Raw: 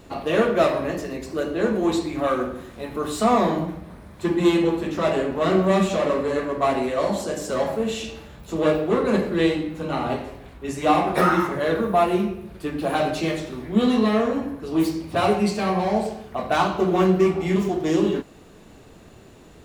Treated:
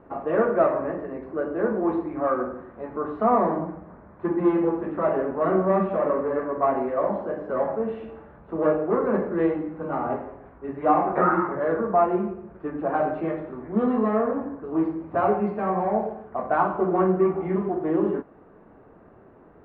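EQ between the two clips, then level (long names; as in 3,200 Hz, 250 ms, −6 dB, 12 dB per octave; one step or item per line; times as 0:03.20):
low-pass filter 1,500 Hz 24 dB per octave
low-shelf EQ 180 Hz −11 dB
0.0 dB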